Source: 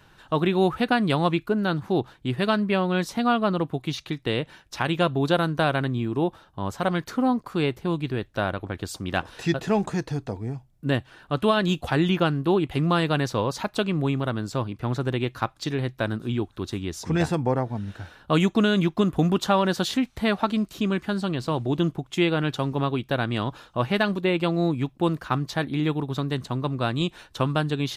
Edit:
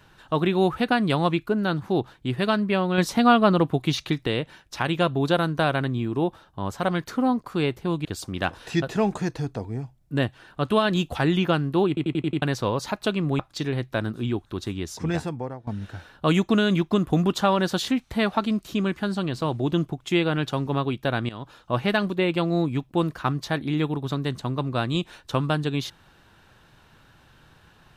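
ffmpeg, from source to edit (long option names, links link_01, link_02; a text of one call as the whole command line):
ffmpeg -i in.wav -filter_complex "[0:a]asplit=13[link_01][link_02][link_03][link_04][link_05][link_06][link_07][link_08][link_09][link_10][link_11][link_12][link_13];[link_01]atrim=end=2.982[link_14];[link_02]atrim=start=2.978:end=4.272,asetpts=PTS-STARTPTS,volume=5dB[link_15];[link_03]atrim=start=4.268:end=8.052[link_16];[link_04]atrim=start=8.768:end=12.692[link_17];[link_05]atrim=start=12.598:end=12.692[link_18];[link_06]atrim=start=12.598:end=12.692[link_19];[link_07]atrim=start=12.598:end=12.692[link_20];[link_08]atrim=start=12.598:end=12.692[link_21];[link_09]atrim=start=12.598:end=12.692[link_22];[link_10]atrim=start=13.138:end=14.112[link_23];[link_11]atrim=start=15.448:end=17.73,asetpts=PTS-STARTPTS,afade=type=out:start_time=1.452:duration=0.83:silence=0.133352[link_24];[link_12]atrim=start=17.73:end=23.35,asetpts=PTS-STARTPTS,afade=type=in:duration=0.004:curve=hsin:silence=0.133352,afade=type=out:start_time=5.616:duration=0.004:curve=hsin:silence=0.16788[link_25];[link_13]atrim=start=23.35,asetpts=PTS-STARTPTS,afade=type=in:duration=0.44:silence=0.16788[link_26];[link_14][link_15]acrossfade=duration=0.004:curve1=hsin:curve2=hsin[link_27];[link_27][link_16]acrossfade=duration=0.004:curve1=hsin:curve2=hsin[link_28];[link_28][link_17]acrossfade=duration=0.004:curve1=hsin:curve2=hsin[link_29];[link_29][link_18]acrossfade=duration=0.004:curve1=hsin:curve2=hsin[link_30];[link_30][link_19]acrossfade=duration=0.004:curve1=hsin:curve2=hsin[link_31];[link_31][link_20]acrossfade=duration=0.004:curve1=hsin:curve2=hsin[link_32];[link_32][link_21]acrossfade=duration=0.004:curve1=hsin:curve2=hsin[link_33];[link_33][link_22]acrossfade=duration=0.004:curve1=hsin:curve2=hsin[link_34];[link_34][link_23]acrossfade=duration=0.004:curve1=hsin:curve2=hsin[link_35];[link_24][link_25][link_26]concat=n=3:v=0:a=1[link_36];[link_35][link_36]acrossfade=duration=0.004:curve1=hsin:curve2=hsin" out.wav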